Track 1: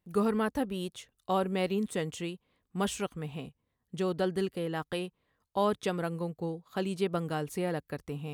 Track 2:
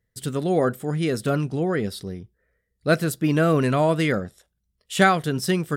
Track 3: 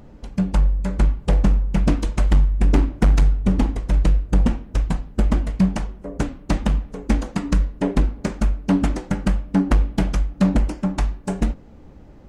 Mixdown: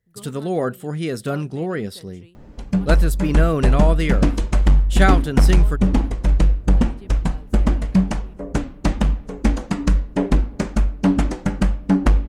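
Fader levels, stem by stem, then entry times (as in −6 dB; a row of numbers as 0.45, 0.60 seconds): −15.0, −1.0, +1.5 decibels; 0.00, 0.00, 2.35 seconds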